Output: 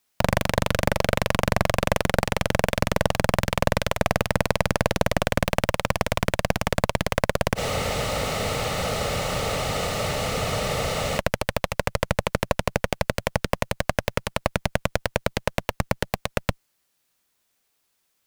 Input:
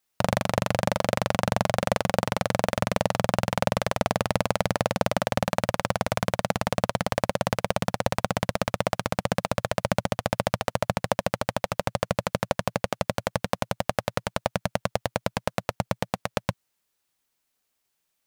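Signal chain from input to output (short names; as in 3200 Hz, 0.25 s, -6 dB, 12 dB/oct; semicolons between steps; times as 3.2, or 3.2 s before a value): added harmonics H 2 -11 dB, 6 -34 dB, 8 -11 dB, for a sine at -3.5 dBFS; requantised 12-bit, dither triangular; spectral freeze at 7.59, 3.59 s; gain -1 dB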